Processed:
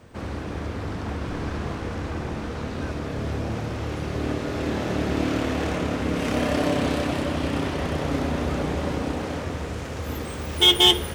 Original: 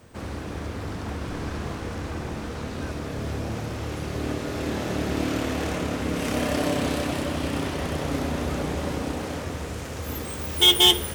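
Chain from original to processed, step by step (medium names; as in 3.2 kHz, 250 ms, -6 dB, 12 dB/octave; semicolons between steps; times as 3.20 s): treble shelf 7.2 kHz -11 dB; trim +2 dB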